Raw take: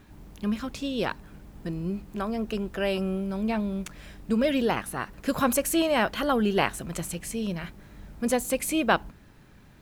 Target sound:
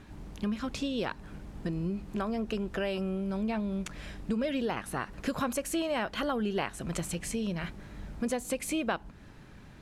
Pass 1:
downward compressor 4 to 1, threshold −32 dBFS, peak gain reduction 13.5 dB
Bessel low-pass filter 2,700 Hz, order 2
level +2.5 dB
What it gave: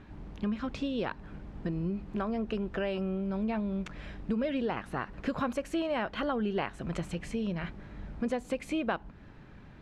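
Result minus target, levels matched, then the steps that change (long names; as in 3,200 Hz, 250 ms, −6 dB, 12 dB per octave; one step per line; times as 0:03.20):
8,000 Hz band −13.5 dB
change: Bessel low-pass filter 8,500 Hz, order 2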